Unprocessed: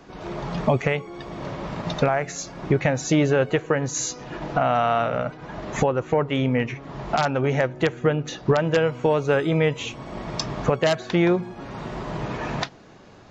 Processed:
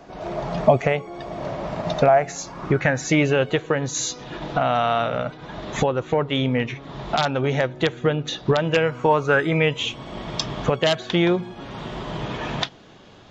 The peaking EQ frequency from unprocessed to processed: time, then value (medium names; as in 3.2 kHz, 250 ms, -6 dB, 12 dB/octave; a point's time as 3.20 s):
peaking EQ +10 dB 0.44 oct
2.17 s 660 Hz
3.54 s 3.6 kHz
8.64 s 3.6 kHz
9.10 s 910 Hz
9.76 s 3.3 kHz